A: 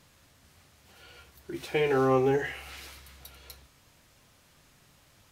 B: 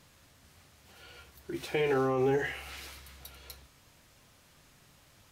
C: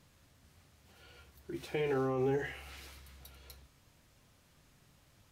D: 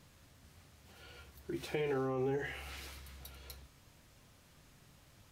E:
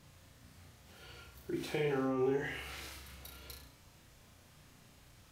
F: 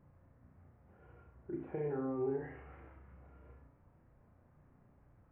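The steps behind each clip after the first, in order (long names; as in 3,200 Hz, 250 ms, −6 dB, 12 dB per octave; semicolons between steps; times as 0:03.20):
brickwall limiter −19.5 dBFS, peak gain reduction 8 dB
low-shelf EQ 370 Hz +5.5 dB; level −7 dB
downward compressor 2 to 1, threshold −39 dBFS, peak gain reduction 6.5 dB; level +3 dB
flutter between parallel walls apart 5.8 metres, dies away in 0.49 s
Gaussian smoothing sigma 6.1 samples; level −3 dB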